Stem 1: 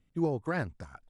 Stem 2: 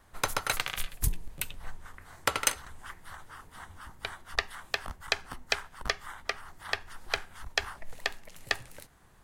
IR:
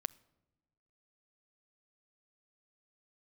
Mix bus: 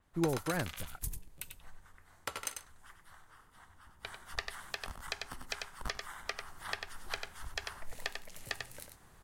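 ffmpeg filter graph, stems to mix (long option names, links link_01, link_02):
-filter_complex "[0:a]volume=-2.5dB[link_01];[1:a]adynamicequalizer=threshold=0.00447:dfrequency=4500:dqfactor=0.7:tfrequency=4500:tqfactor=0.7:attack=5:release=100:ratio=0.375:range=2.5:mode=boostabove:tftype=highshelf,volume=-0.5dB,afade=type=in:start_time=3.9:duration=0.7:silence=0.251189,asplit=2[link_02][link_03];[link_03]volume=-8dB,aecho=0:1:95:1[link_04];[link_01][link_02][link_04]amix=inputs=3:normalize=0,alimiter=limit=-18dB:level=0:latency=1:release=423"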